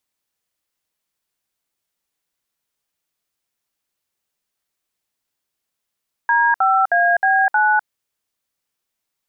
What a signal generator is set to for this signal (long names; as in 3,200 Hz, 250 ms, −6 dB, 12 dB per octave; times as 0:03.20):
touch tones "D5AB9", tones 252 ms, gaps 61 ms, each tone −15 dBFS